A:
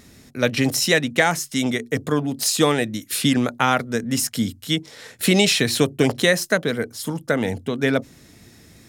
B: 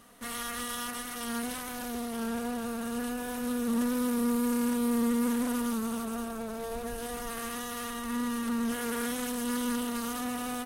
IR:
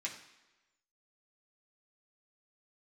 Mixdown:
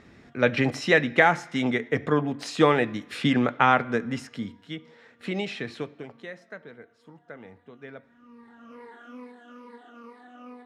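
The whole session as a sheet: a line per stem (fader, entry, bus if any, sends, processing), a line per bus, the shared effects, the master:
0:03.92 0 dB → 0:04.70 −11 dB → 0:05.76 −11 dB → 0:06.05 −21 dB, 0.00 s, send −10.5 dB, spectral tilt +1.5 dB per octave
−9.5 dB, 0.00 s, no send, rippled gain that drifts along the octave scale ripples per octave 0.9, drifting −2.3 Hz, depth 15 dB; Butterworth high-pass 230 Hz; multi-voice chorus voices 4, 0.19 Hz, delay 25 ms, depth 2 ms; automatic ducking −16 dB, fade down 0.45 s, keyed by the first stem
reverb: on, RT60 1.1 s, pre-delay 3 ms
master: low-pass filter 1,800 Hz 12 dB per octave

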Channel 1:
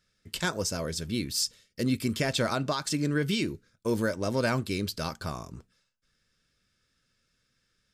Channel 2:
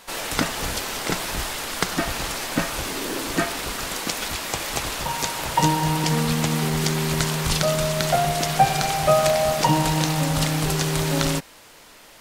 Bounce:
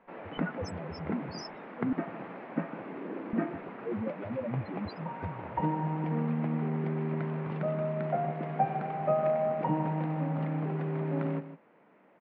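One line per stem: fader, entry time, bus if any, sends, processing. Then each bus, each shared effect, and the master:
−2.5 dB, 0.00 s, muted 0:01.93–0:03.33, no send, no echo send, spectral peaks only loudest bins 2
−15.0 dB, 0.00 s, no send, echo send −12 dB, elliptic band-pass filter 180–2,300 Hz, stop band 50 dB; tilt shelving filter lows +8 dB, about 1,400 Hz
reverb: not used
echo: single-tap delay 155 ms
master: low-shelf EQ 120 Hz +8 dB

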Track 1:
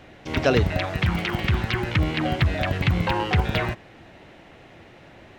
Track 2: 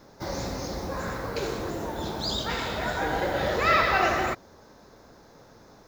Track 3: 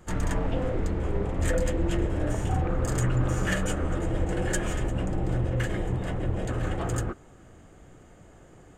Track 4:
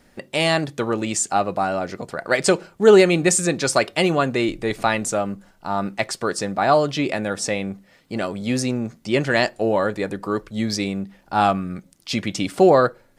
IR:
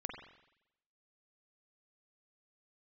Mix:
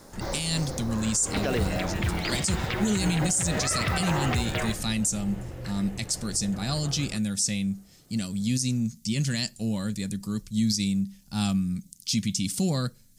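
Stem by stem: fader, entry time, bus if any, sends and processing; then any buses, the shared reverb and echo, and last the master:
−5.0 dB, 1.00 s, no send, noise that follows the level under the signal 24 dB
+2.0 dB, 0.00 s, no send, automatic ducking −8 dB, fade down 0.85 s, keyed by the fourth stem
−11.0 dB, 0.05 s, no send, no processing
+1.5 dB, 0.00 s, no send, drawn EQ curve 220 Hz 0 dB, 330 Hz −19 dB, 710 Hz −24 dB, 1,500 Hz −19 dB, 6,200 Hz +8 dB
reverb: not used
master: brickwall limiter −16 dBFS, peak gain reduction 16.5 dB

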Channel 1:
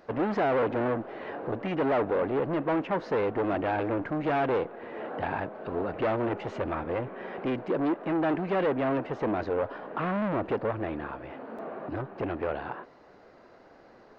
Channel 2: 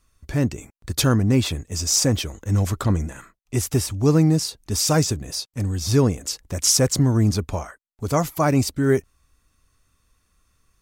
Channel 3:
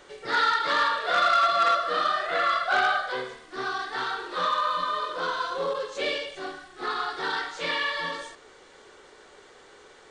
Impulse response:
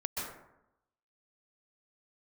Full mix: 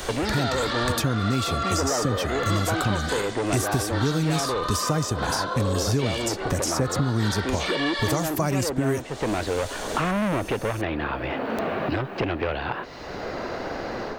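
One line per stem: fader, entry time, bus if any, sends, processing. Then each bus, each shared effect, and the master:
−11.0 dB, 0.00 s, no send, no processing
−3.0 dB, 0.00 s, no send, downward compressor 2 to 1, threshold −35 dBFS, peak gain reduction 12.5 dB
−12.5 dB, 0.00 s, no send, high-shelf EQ 5,100 Hz +7 dB; brickwall limiter −20 dBFS, peak gain reduction 9 dB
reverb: not used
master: automatic gain control gain up to 9 dB; soft clipping −6 dBFS, distortion −35 dB; multiband upward and downward compressor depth 100%

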